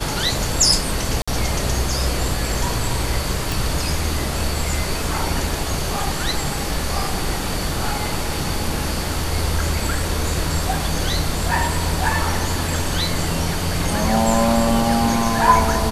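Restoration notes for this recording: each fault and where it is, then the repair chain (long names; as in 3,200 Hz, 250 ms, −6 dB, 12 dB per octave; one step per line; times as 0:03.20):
0:01.22–0:01.27: drop-out 55 ms
0:03.52: click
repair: click removal
repair the gap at 0:01.22, 55 ms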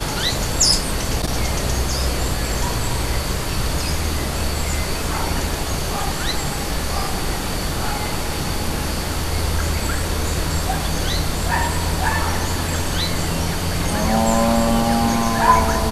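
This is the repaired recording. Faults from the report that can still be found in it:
none of them is left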